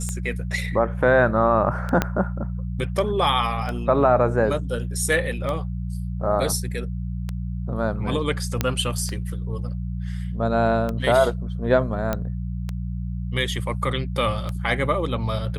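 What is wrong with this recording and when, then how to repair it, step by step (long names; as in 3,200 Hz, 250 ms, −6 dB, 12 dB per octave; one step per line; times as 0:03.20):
mains hum 60 Hz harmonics 3 −28 dBFS
scratch tick 33 1/3 rpm −15 dBFS
0:02.02: click −6 dBFS
0:08.61: click −6 dBFS
0:12.13: click −10 dBFS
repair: click removal
hum removal 60 Hz, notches 3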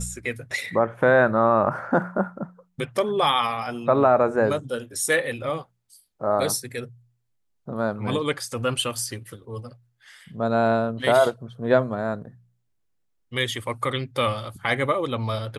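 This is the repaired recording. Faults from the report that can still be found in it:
0:02.02: click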